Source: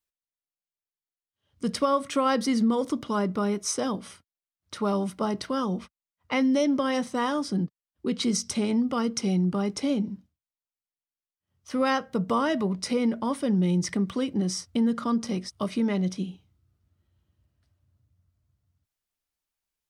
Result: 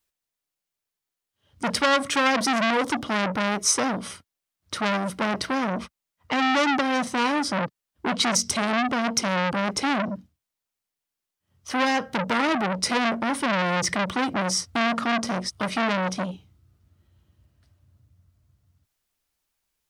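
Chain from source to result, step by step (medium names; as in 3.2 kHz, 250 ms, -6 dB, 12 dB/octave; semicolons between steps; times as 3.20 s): transformer saturation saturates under 2.7 kHz; trim +8.5 dB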